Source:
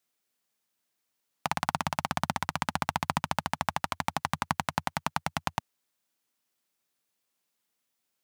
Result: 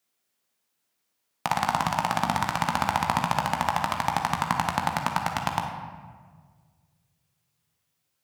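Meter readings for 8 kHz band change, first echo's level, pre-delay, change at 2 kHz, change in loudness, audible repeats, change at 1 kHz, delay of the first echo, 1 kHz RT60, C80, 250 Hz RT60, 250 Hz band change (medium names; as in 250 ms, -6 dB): +3.0 dB, no echo, 17 ms, +4.0 dB, +5.5 dB, no echo, +6.5 dB, no echo, 1.5 s, 6.5 dB, 1.9 s, +4.5 dB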